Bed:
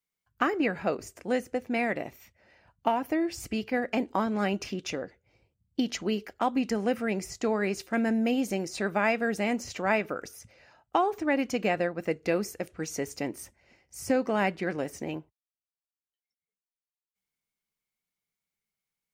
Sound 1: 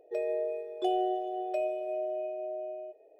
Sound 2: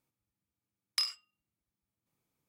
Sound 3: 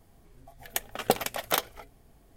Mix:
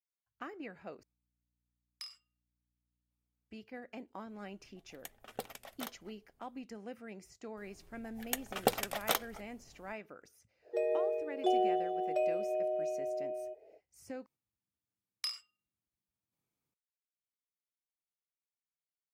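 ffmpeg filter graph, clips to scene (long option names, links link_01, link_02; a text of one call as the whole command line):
ffmpeg -i bed.wav -i cue0.wav -i cue1.wav -i cue2.wav -filter_complex "[2:a]asplit=2[link_01][link_02];[3:a]asplit=2[link_03][link_04];[0:a]volume=-18.5dB[link_05];[link_01]aeval=exprs='val(0)+0.000316*(sin(2*PI*60*n/s)+sin(2*PI*2*60*n/s)/2+sin(2*PI*3*60*n/s)/3+sin(2*PI*4*60*n/s)/4+sin(2*PI*5*60*n/s)/5)':channel_layout=same[link_06];[link_05]asplit=3[link_07][link_08][link_09];[link_07]atrim=end=1.034[link_10];[link_06]atrim=end=2.48,asetpts=PTS-STARTPTS,volume=-15.5dB[link_11];[link_08]atrim=start=3.506:end=14.264[link_12];[link_02]atrim=end=2.48,asetpts=PTS-STARTPTS,volume=-6.5dB[link_13];[link_09]atrim=start=16.736[link_14];[link_03]atrim=end=2.36,asetpts=PTS-STARTPTS,volume=-17.5dB,afade=type=in:duration=0.004:curve=hsin,afade=type=out:start_time=2.356:duration=0.004:curve=hsin,adelay=189189S[link_15];[link_04]atrim=end=2.36,asetpts=PTS-STARTPTS,volume=-5dB,afade=type=in:duration=0.004:curve=hsin,afade=type=out:start_time=2.356:duration=0.004:curve=hsin,adelay=7570[link_16];[1:a]atrim=end=3.19,asetpts=PTS-STARTPTS,volume=-0.5dB,afade=type=in:duration=0.05,afade=type=out:start_time=3.14:duration=0.05,adelay=10620[link_17];[link_10][link_11]acrossfade=duration=0.004:curve1=hsin:curve2=hsin[link_18];[link_18][link_12]acrossfade=duration=0.004:curve1=hsin:curve2=hsin[link_19];[link_19][link_13]acrossfade=duration=0.004:curve1=hsin:curve2=hsin[link_20];[link_20][link_14]acrossfade=duration=0.004:curve1=hsin:curve2=hsin[link_21];[link_21][link_15][link_16][link_17]amix=inputs=4:normalize=0" out.wav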